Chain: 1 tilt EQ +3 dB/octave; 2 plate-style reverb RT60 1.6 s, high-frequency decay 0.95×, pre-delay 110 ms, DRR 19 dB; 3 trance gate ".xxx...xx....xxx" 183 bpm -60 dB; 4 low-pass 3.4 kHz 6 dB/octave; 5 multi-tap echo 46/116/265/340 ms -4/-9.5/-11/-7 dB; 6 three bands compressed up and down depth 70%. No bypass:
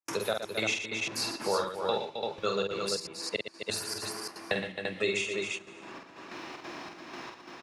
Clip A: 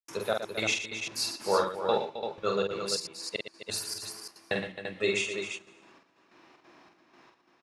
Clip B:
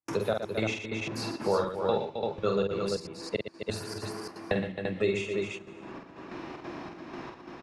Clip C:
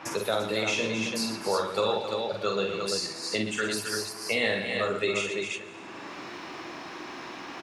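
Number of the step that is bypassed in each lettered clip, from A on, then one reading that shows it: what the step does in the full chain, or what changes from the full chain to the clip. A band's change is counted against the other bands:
6, momentary loudness spread change -4 LU; 1, 125 Hz band +10.5 dB; 3, 250 Hz band +2.5 dB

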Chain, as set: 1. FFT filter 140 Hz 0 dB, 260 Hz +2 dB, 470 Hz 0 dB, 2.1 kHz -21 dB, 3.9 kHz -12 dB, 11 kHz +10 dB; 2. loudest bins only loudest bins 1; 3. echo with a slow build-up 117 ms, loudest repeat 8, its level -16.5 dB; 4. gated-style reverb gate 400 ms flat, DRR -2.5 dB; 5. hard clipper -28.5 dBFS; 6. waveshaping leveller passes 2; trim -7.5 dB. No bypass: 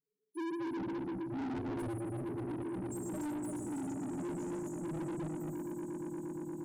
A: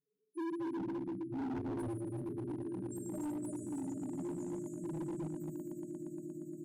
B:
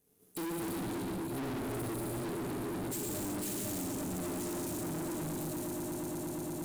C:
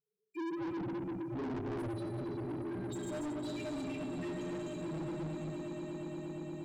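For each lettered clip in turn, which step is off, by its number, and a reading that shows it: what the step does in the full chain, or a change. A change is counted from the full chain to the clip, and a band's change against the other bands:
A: 6, 2 kHz band -5.0 dB; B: 2, 8 kHz band +9.0 dB; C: 1, 8 kHz band -5.5 dB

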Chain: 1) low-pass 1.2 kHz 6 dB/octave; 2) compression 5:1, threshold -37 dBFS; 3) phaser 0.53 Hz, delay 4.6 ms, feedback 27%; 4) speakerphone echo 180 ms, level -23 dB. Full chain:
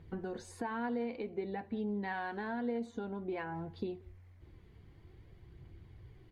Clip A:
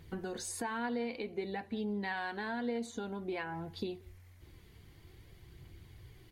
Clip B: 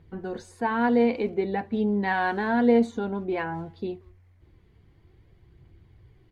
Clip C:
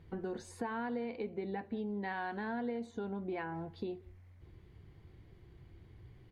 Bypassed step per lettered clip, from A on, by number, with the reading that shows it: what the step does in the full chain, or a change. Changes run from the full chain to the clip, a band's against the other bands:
1, 4 kHz band +9.0 dB; 2, mean gain reduction 8.0 dB; 3, momentary loudness spread change -1 LU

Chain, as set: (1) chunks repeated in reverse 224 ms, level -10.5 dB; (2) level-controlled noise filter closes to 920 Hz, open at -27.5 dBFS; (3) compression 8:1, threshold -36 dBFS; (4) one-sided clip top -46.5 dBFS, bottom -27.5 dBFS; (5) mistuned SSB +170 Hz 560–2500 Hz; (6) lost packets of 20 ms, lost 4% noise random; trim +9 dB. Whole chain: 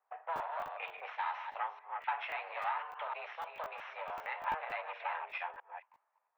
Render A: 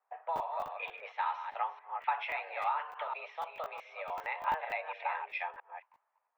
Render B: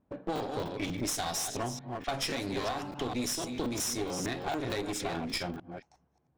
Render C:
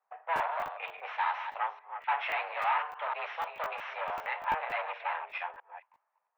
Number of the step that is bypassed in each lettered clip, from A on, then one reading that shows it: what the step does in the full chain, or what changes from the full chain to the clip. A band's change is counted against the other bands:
4, distortion -7 dB; 5, 4 kHz band +16.0 dB; 3, mean gain reduction 6.0 dB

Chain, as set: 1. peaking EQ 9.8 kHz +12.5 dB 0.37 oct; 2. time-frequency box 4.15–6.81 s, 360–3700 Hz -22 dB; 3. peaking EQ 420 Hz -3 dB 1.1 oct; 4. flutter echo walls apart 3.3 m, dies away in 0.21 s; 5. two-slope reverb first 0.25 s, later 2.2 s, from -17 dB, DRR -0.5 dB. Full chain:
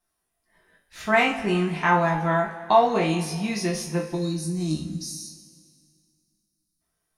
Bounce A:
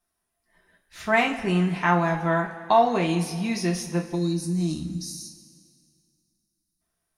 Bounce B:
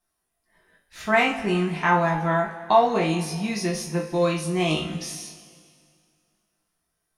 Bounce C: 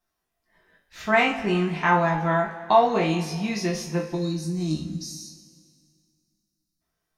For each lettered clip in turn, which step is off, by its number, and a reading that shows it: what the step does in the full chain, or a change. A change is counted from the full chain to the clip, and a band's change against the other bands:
4, 250 Hz band +2.5 dB; 2, 4 kHz band +1.5 dB; 1, 8 kHz band -3.0 dB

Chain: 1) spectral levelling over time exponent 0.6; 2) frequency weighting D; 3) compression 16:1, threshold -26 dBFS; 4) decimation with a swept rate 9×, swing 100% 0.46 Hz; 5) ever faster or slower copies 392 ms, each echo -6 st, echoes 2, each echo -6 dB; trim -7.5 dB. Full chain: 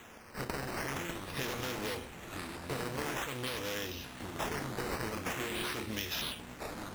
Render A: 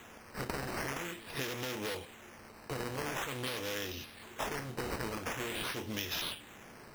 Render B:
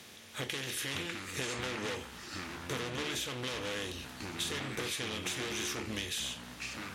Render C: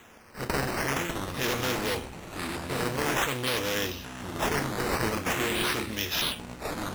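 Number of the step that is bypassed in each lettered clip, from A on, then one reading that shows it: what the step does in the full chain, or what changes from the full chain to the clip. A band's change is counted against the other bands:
5, momentary loudness spread change +4 LU; 4, 8 kHz band +5.5 dB; 3, mean gain reduction 5.5 dB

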